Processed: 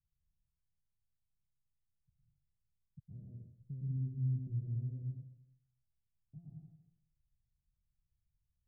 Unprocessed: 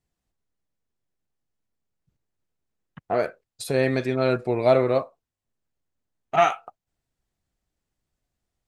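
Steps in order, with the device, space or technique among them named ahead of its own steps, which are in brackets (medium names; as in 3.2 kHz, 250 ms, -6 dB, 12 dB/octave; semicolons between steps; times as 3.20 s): club heard from the street (peak limiter -18 dBFS, peak gain reduction 11.5 dB; low-pass 140 Hz 24 dB/octave; reverberation RT60 0.75 s, pre-delay 107 ms, DRR -3 dB); trim -4 dB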